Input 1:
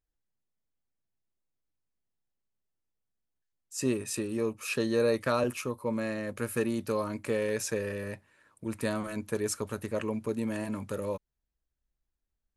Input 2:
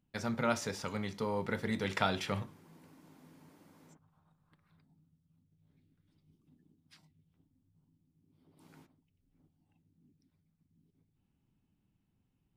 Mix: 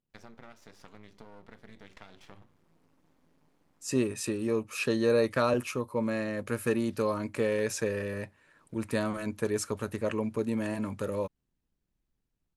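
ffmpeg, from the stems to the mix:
ffmpeg -i stem1.wav -i stem2.wav -filter_complex "[0:a]deesser=0.45,adelay=100,volume=1.5dB[link_01];[1:a]acompressor=threshold=-39dB:ratio=8,aeval=exprs='max(val(0),0)':channel_layout=same,volume=-5.5dB[link_02];[link_01][link_02]amix=inputs=2:normalize=0,highshelf=frequency=9400:gain=-7.5" out.wav

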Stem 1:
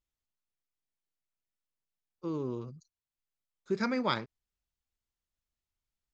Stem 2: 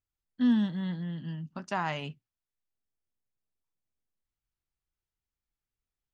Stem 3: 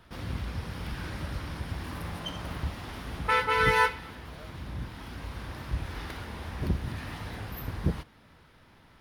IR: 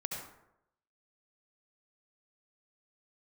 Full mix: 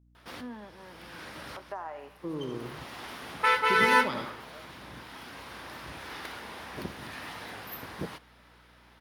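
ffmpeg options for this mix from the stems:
-filter_complex "[0:a]volume=0dB,asplit=2[link_01][link_02];[link_02]volume=-6dB[link_03];[1:a]highpass=frequency=380:width=0.5412,highpass=frequency=380:width=1.3066,volume=0dB,asplit=3[link_04][link_05][link_06];[link_05]volume=-19.5dB[link_07];[2:a]highpass=frequency=420:poles=1,adelay=150,volume=2dB[link_08];[link_06]apad=whole_len=403845[link_09];[link_08][link_09]sidechaincompress=threshold=-49dB:ratio=16:attack=16:release=680[link_10];[link_01][link_04]amix=inputs=2:normalize=0,lowpass=1200,acompressor=threshold=-35dB:ratio=6,volume=0dB[link_11];[3:a]atrim=start_sample=2205[link_12];[link_03][link_07]amix=inputs=2:normalize=0[link_13];[link_13][link_12]afir=irnorm=-1:irlink=0[link_14];[link_10][link_11][link_14]amix=inputs=3:normalize=0,lowshelf=frequency=110:gain=-10,aeval=exprs='val(0)+0.000891*(sin(2*PI*60*n/s)+sin(2*PI*2*60*n/s)/2+sin(2*PI*3*60*n/s)/3+sin(2*PI*4*60*n/s)/4+sin(2*PI*5*60*n/s)/5)':channel_layout=same"

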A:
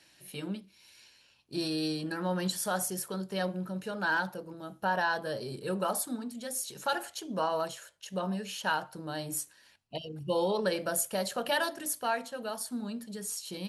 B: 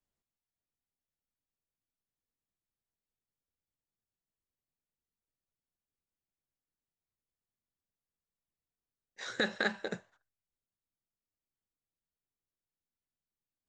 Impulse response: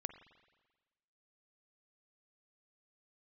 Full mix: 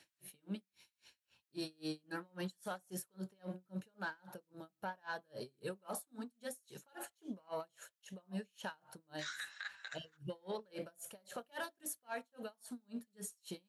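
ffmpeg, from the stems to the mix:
-filter_complex "[0:a]equalizer=frequency=4900:width_type=o:width=0.24:gain=-5.5,asoftclip=type=tanh:threshold=-21dB,aeval=exprs='val(0)*pow(10,-38*(0.5-0.5*cos(2*PI*3.7*n/s))/20)':channel_layout=same,volume=-2.5dB[link_01];[1:a]highpass=frequency=1200:width=0.5412,highpass=frequency=1200:width=1.3066,acompressor=threshold=-40dB:ratio=6,volume=1dB[link_02];[link_01][link_02]amix=inputs=2:normalize=0,highpass=53,alimiter=level_in=8.5dB:limit=-24dB:level=0:latency=1:release=59,volume=-8.5dB"

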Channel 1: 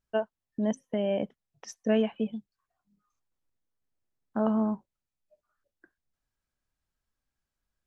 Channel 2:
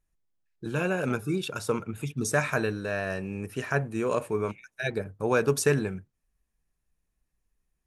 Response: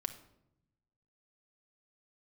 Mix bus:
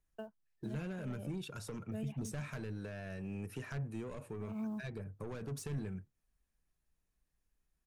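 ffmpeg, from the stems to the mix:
-filter_complex "[0:a]acrusher=bits=8:mode=log:mix=0:aa=0.000001,adelay=50,volume=-8dB[link_01];[1:a]asoftclip=type=tanh:threshold=-26dB,volume=-4dB,asplit=2[link_02][link_03];[link_03]apad=whole_len=349164[link_04];[link_01][link_04]sidechaincompress=threshold=-43dB:ratio=8:attack=16:release=144[link_05];[link_05][link_02]amix=inputs=2:normalize=0,acrossover=split=210[link_06][link_07];[link_07]acompressor=threshold=-45dB:ratio=10[link_08];[link_06][link_08]amix=inputs=2:normalize=0"

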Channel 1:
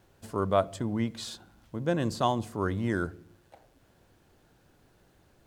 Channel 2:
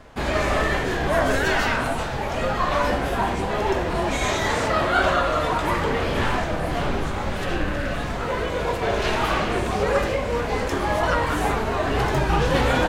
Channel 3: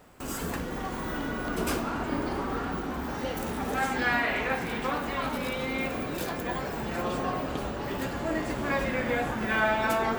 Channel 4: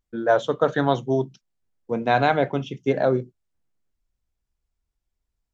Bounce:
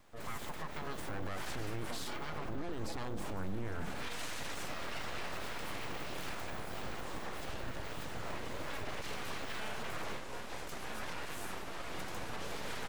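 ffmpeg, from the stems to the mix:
ffmpeg -i stem1.wav -i stem2.wav -i stem3.wav -i stem4.wav -filter_complex "[0:a]asubboost=boost=7.5:cutoff=160,adelay=750,volume=0.5dB[link_01];[1:a]highshelf=frequency=4600:gain=10.5,volume=-17.5dB[link_02];[2:a]asubboost=boost=7:cutoff=63,volume=-11dB[link_03];[3:a]aecho=1:1:4.8:0.82,volume=-17.5dB,asplit=2[link_04][link_05];[link_05]apad=whole_len=568068[link_06];[link_02][link_06]sidechaincompress=threshold=-47dB:ratio=8:attack=9.3:release=140[link_07];[link_01][link_07][link_03][link_04]amix=inputs=4:normalize=0,aeval=exprs='abs(val(0))':channel_layout=same,alimiter=level_in=5dB:limit=-24dB:level=0:latency=1:release=64,volume=-5dB" out.wav

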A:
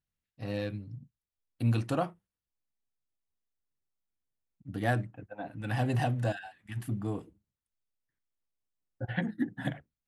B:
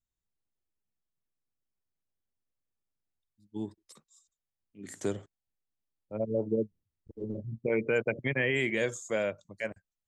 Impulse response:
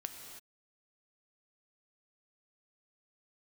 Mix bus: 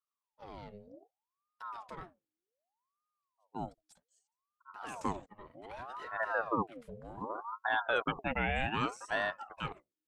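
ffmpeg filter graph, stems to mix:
-filter_complex "[0:a]lowpass=7200,acompressor=threshold=-38dB:ratio=1.5,asoftclip=type=tanh:threshold=-26dB,volume=-7.5dB[link_01];[1:a]agate=range=-8dB:threshold=-52dB:ratio=16:detection=peak,volume=-0.5dB[link_02];[link_01][link_02]amix=inputs=2:normalize=0,acrossover=split=2700[link_03][link_04];[link_04]acompressor=threshold=-47dB:ratio=4:attack=1:release=60[link_05];[link_03][link_05]amix=inputs=2:normalize=0,aeval=exprs='val(0)*sin(2*PI*770*n/s+770*0.6/0.65*sin(2*PI*0.65*n/s))':channel_layout=same"

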